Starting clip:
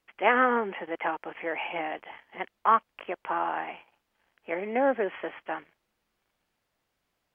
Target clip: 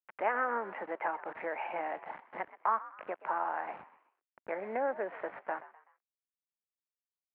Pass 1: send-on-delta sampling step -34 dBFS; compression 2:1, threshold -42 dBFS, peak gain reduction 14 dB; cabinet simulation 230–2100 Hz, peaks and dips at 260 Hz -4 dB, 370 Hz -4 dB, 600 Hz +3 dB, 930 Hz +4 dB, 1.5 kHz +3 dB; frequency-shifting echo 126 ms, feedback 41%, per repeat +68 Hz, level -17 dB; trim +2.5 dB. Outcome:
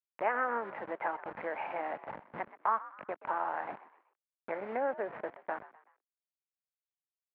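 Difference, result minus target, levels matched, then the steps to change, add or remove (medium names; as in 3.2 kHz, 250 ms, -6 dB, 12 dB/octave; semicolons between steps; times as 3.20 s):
send-on-delta sampling: distortion +9 dB
change: send-on-delta sampling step -41.5 dBFS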